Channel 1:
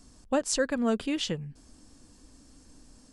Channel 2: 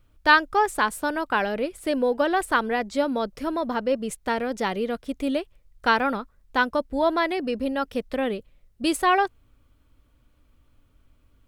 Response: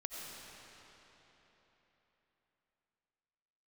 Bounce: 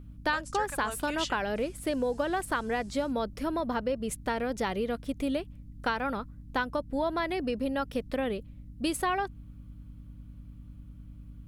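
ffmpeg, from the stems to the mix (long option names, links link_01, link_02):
-filter_complex "[0:a]highpass=890,dynaudnorm=framelen=380:gausssize=3:maxgain=10.5dB,volume=-11dB[link_01];[1:a]acompressor=threshold=-24dB:ratio=6,aeval=exprs='val(0)+0.00501*(sin(2*PI*60*n/s)+sin(2*PI*2*60*n/s)/2+sin(2*PI*3*60*n/s)/3+sin(2*PI*4*60*n/s)/4+sin(2*PI*5*60*n/s)/5)':channel_layout=same,volume=-2dB,asplit=2[link_02][link_03];[link_03]apad=whole_len=137780[link_04];[link_01][link_04]sidechaingate=range=-33dB:threshold=-39dB:ratio=16:detection=peak[link_05];[link_05][link_02]amix=inputs=2:normalize=0,equalizer=frequency=11000:width=5.9:gain=6,aeval=exprs='val(0)+0.00447*(sin(2*PI*50*n/s)+sin(2*PI*2*50*n/s)/2+sin(2*PI*3*50*n/s)/3+sin(2*PI*4*50*n/s)/4+sin(2*PI*5*50*n/s)/5)':channel_layout=same"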